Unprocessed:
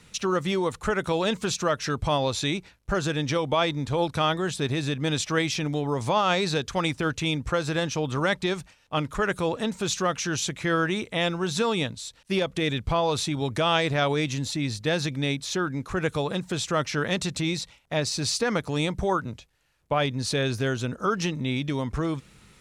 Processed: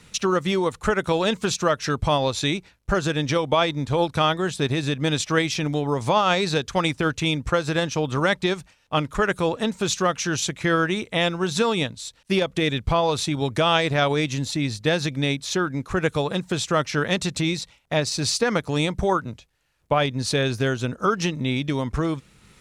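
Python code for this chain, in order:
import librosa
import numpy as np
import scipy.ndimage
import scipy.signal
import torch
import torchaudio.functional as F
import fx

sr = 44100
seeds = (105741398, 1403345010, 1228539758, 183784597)

y = fx.transient(x, sr, attack_db=2, sustain_db=-4)
y = y * 10.0 ** (3.0 / 20.0)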